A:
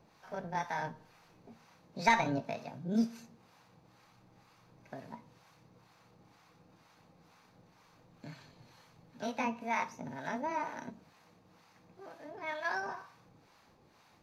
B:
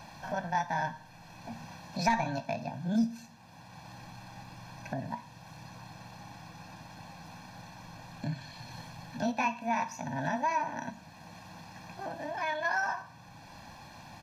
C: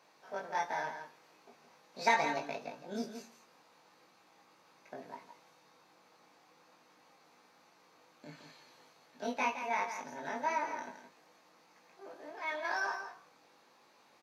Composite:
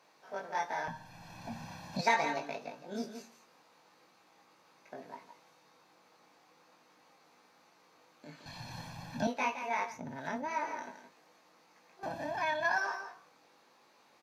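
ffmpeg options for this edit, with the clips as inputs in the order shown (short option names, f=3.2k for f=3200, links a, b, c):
-filter_complex "[1:a]asplit=3[a][b][c];[2:a]asplit=5[d][e][f][g][h];[d]atrim=end=0.882[i];[a]atrim=start=0.878:end=2.012[j];[e]atrim=start=2.008:end=8.462[k];[b]atrim=start=8.458:end=9.272[l];[f]atrim=start=9.268:end=10[m];[0:a]atrim=start=9.84:end=10.58[n];[g]atrim=start=10.42:end=12.032[o];[c]atrim=start=12.028:end=12.782[p];[h]atrim=start=12.778[q];[i][j]acrossfade=d=0.004:c1=hsin:c2=hsin[r];[r][k]acrossfade=d=0.004:c1=hsin:c2=hsin[s];[s][l]acrossfade=d=0.004:c1=hsin:c2=hsin[t];[t][m]acrossfade=d=0.004:c1=hsin:c2=hsin[u];[u][n]acrossfade=d=0.16:c1=tri:c2=tri[v];[v][o]acrossfade=d=0.16:c1=tri:c2=tri[w];[w][p]acrossfade=d=0.004:c1=hsin:c2=hsin[x];[x][q]acrossfade=d=0.004:c1=hsin:c2=hsin"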